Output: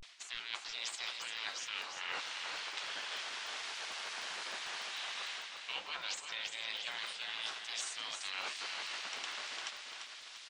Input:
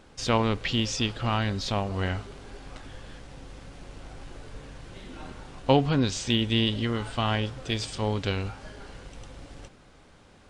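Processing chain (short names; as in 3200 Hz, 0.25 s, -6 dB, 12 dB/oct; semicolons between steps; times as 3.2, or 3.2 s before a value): LPF 4700 Hz 12 dB/oct; spectral gate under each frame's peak -20 dB weak; HPF 1000 Hz 6 dB/oct; high shelf 3400 Hz +8.5 dB; reverse; compressor 12:1, threshold -49 dBFS, peak gain reduction 21.5 dB; reverse; vibrato 0.3 Hz 86 cents; on a send: feedback echo 0.345 s, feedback 45%, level -6.5 dB; on the sum: crackling interface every 0.15 s, samples 64, zero, from 0.92; gain +11 dB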